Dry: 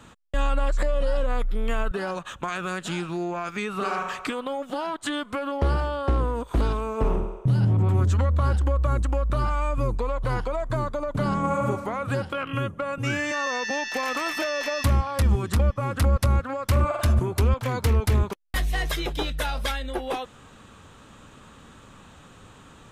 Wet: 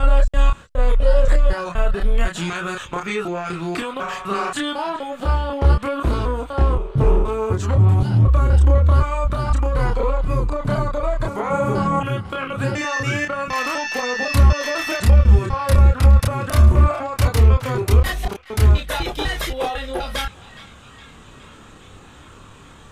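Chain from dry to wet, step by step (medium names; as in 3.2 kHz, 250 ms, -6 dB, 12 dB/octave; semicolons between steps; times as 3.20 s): slices played last to first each 250 ms, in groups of 3; band-passed feedback delay 414 ms, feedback 74%, band-pass 2.5 kHz, level -17 dB; chorus voices 4, 0.12 Hz, delay 29 ms, depth 1.5 ms; trim +7.5 dB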